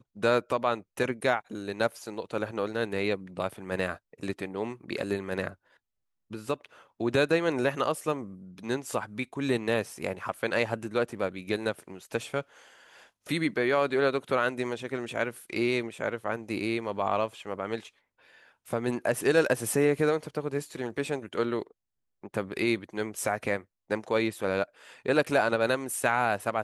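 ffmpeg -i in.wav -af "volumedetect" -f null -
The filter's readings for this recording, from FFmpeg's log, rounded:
mean_volume: -30.1 dB
max_volume: -9.1 dB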